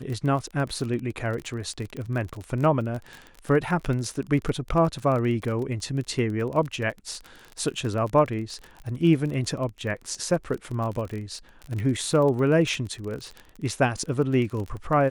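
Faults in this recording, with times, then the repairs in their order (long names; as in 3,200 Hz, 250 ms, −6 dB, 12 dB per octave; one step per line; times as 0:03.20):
surface crackle 32 per second −30 dBFS
0:01.97: click −24 dBFS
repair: click removal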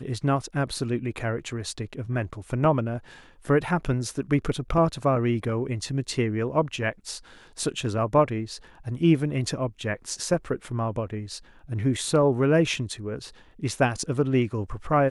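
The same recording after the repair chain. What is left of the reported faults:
none of them is left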